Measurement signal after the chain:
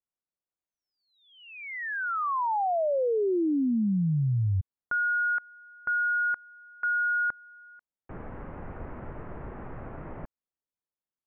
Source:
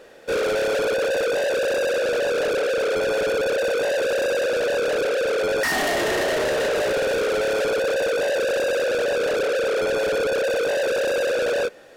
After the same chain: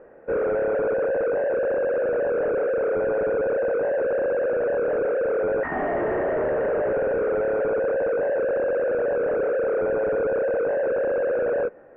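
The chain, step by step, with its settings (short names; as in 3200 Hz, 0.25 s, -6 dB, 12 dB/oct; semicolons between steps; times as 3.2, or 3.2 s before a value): Bessel low-pass 1100 Hz, order 8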